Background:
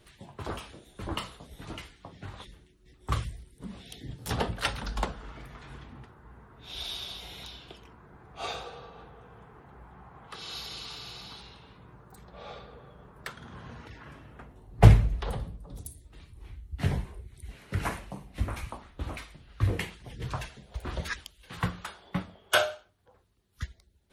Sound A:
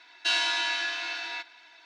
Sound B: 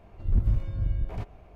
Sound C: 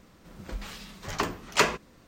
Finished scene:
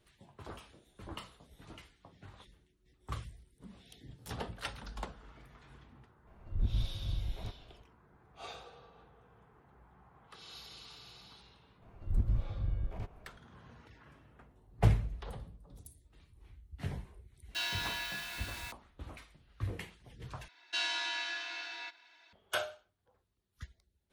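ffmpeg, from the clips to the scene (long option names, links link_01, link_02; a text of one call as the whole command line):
ffmpeg -i bed.wav -i cue0.wav -i cue1.wav -filter_complex "[2:a]asplit=2[link_01][link_02];[1:a]asplit=2[link_03][link_04];[0:a]volume=-11dB[link_05];[link_03]acrusher=bits=5:mix=0:aa=0.000001[link_06];[link_05]asplit=2[link_07][link_08];[link_07]atrim=end=20.484[link_09];[link_04]atrim=end=1.85,asetpts=PTS-STARTPTS,volume=-8.5dB[link_10];[link_08]atrim=start=22.326[link_11];[link_01]atrim=end=1.55,asetpts=PTS-STARTPTS,volume=-8.5dB,afade=type=in:duration=0.004:curve=hsin,afade=type=out:start_time=1.546:duration=0.004:curve=hsin,adelay=6270[link_12];[link_02]atrim=end=1.55,asetpts=PTS-STARTPTS,volume=-7dB,afade=type=in:duration=0.004:curve=hsin,afade=type=out:start_time=1.546:duration=0.004:curve=hsin,adelay=11820[link_13];[link_06]atrim=end=1.85,asetpts=PTS-STARTPTS,volume=-10.5dB,afade=type=in:duration=0.004:curve=hsin,afade=type=out:start_time=1.846:duration=0.004:curve=hsin,adelay=17300[link_14];[link_09][link_10]acrossfade=duration=0.004:curve1=hsin:curve2=hsin[link_15];[link_15][link_11]acrossfade=duration=0.004:curve1=hsin:curve2=hsin[link_16];[link_16][link_12][link_13][link_14]amix=inputs=4:normalize=0" out.wav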